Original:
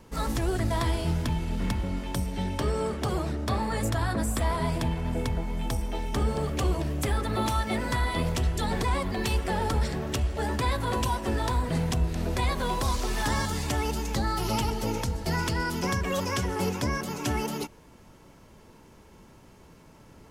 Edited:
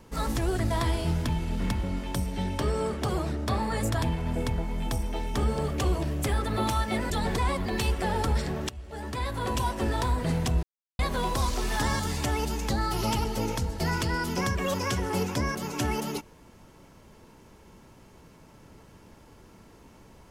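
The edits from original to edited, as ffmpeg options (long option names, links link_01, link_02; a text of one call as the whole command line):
ffmpeg -i in.wav -filter_complex "[0:a]asplit=6[link_01][link_02][link_03][link_04][link_05][link_06];[link_01]atrim=end=4.022[link_07];[link_02]atrim=start=4.808:end=7.892[link_08];[link_03]atrim=start=8.558:end=10.15,asetpts=PTS-STARTPTS,afade=type=out:start_time=1.588:duration=0.004:curve=hsin:silence=0.112202[link_09];[link_04]atrim=start=10.15:end=12.09,asetpts=PTS-STARTPTS,afade=type=in:duration=1:silence=0.112202,afade=type=out:start_time=1.936:duration=0.004:curve=hsin[link_10];[link_05]atrim=start=12.09:end=12.45,asetpts=PTS-STARTPTS,volume=0[link_11];[link_06]atrim=start=12.45,asetpts=PTS-STARTPTS,afade=type=in:duration=0.004:curve=hsin[link_12];[link_07][link_08]acrossfade=duration=0.004:curve1=hsin:curve2=hsin[link_13];[link_09][link_10][link_11][link_12]concat=n=4:v=0:a=1[link_14];[link_13][link_14]acrossfade=duration=0.004:curve1=hsin:curve2=hsin" out.wav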